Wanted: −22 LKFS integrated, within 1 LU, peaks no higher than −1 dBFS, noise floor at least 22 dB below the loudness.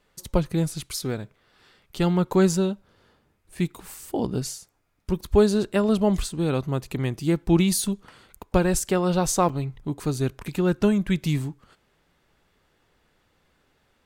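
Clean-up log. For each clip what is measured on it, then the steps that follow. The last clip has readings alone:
number of dropouts 1; longest dropout 5.6 ms; integrated loudness −24.5 LKFS; sample peak −4.5 dBFS; target loudness −22.0 LKFS
→ repair the gap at 0:09.49, 5.6 ms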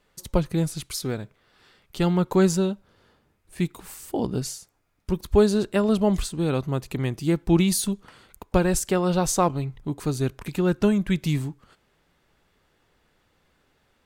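number of dropouts 0; integrated loudness −24.5 LKFS; sample peak −4.5 dBFS; target loudness −22.0 LKFS
→ level +2.5 dB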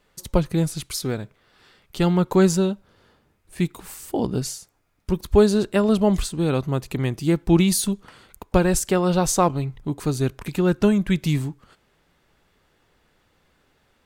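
integrated loudness −22.0 LKFS; sample peak −2.5 dBFS; background noise floor −65 dBFS

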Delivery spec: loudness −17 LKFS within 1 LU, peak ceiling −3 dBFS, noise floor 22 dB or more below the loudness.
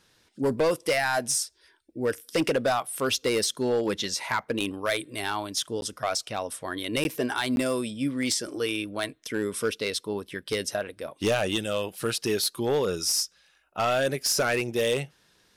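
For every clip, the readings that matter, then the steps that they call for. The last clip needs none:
share of clipped samples 0.9%; peaks flattened at −18.5 dBFS; number of dropouts 3; longest dropout 11 ms; integrated loudness −27.5 LKFS; sample peak −18.5 dBFS; target loudness −17.0 LKFS
→ clipped peaks rebuilt −18.5 dBFS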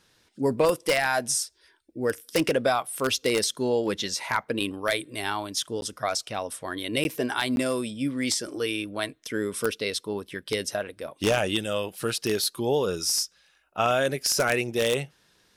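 share of clipped samples 0.0%; number of dropouts 3; longest dropout 11 ms
→ repair the gap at 0:05.81/0:07.04/0:07.56, 11 ms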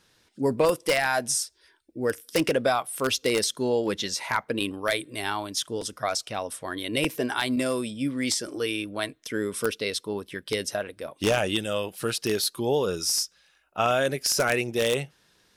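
number of dropouts 0; integrated loudness −27.0 LKFS; sample peak −9.5 dBFS; target loudness −17.0 LKFS
→ level +10 dB
brickwall limiter −3 dBFS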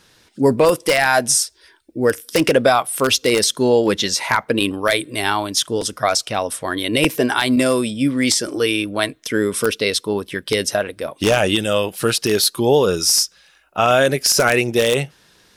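integrated loudness −17.5 LKFS; sample peak −3.0 dBFS; background noise floor −54 dBFS

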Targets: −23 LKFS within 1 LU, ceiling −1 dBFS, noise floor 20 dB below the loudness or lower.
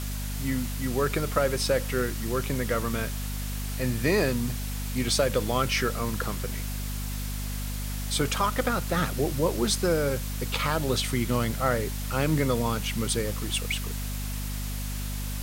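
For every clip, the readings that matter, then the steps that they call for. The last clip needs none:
mains hum 50 Hz; hum harmonics up to 250 Hz; level of the hum −30 dBFS; background noise floor −32 dBFS; target noise floor −48 dBFS; integrated loudness −28.0 LKFS; sample peak −9.0 dBFS; target loudness −23.0 LKFS
→ hum removal 50 Hz, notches 5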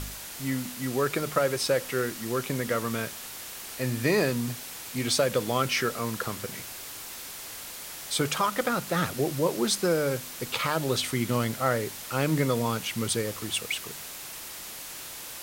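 mains hum none found; background noise floor −41 dBFS; target noise floor −49 dBFS
→ noise reduction from a noise print 8 dB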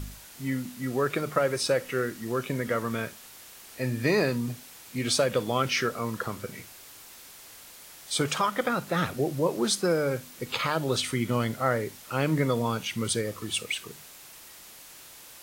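background noise floor −49 dBFS; integrated loudness −28.5 LKFS; sample peak −10.0 dBFS; target loudness −23.0 LKFS
→ level +5.5 dB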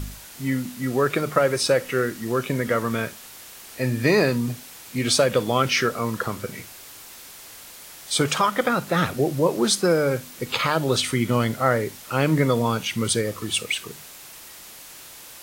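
integrated loudness −23.0 LKFS; sample peak −4.5 dBFS; background noise floor −43 dBFS

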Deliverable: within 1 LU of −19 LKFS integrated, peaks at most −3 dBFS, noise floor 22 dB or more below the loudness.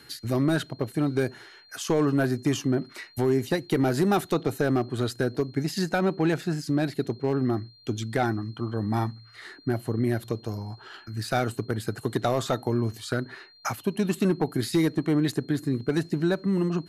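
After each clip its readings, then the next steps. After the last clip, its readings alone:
share of clipped samples 0.6%; peaks flattened at −15.5 dBFS; interfering tone 4,200 Hz; level of the tone −53 dBFS; integrated loudness −27.0 LKFS; sample peak −15.5 dBFS; target loudness −19.0 LKFS
→ clipped peaks rebuilt −15.5 dBFS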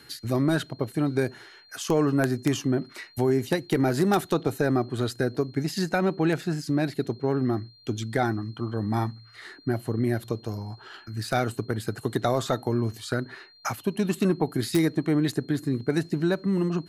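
share of clipped samples 0.0%; interfering tone 4,200 Hz; level of the tone −53 dBFS
→ notch filter 4,200 Hz, Q 30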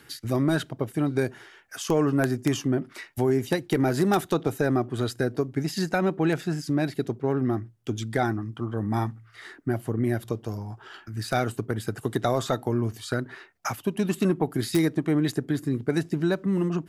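interfering tone none found; integrated loudness −27.0 LKFS; sample peak −6.5 dBFS; target loudness −19.0 LKFS
→ level +8 dB
brickwall limiter −3 dBFS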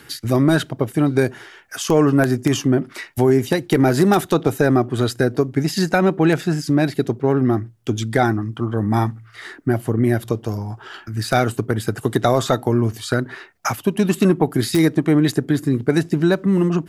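integrated loudness −19.0 LKFS; sample peak −3.0 dBFS; background noise floor −46 dBFS

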